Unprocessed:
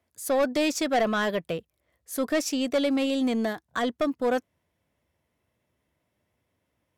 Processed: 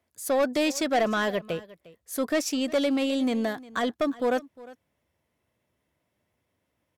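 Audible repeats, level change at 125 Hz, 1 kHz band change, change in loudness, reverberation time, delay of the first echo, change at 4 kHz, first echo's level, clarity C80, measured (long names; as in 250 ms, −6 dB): 1, −0.5 dB, 0.0 dB, 0.0 dB, no reverb audible, 355 ms, 0.0 dB, −20.0 dB, no reverb audible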